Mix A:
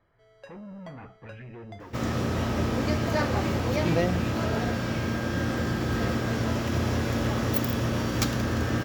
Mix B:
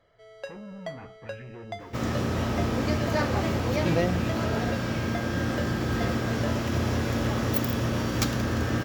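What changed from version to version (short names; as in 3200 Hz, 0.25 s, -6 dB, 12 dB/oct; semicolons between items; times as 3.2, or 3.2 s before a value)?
first sound +10.0 dB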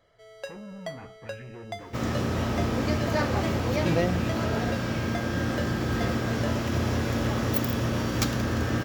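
first sound: add high shelf 6600 Hz +12 dB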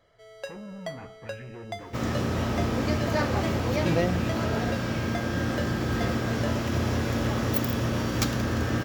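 reverb: on, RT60 0.35 s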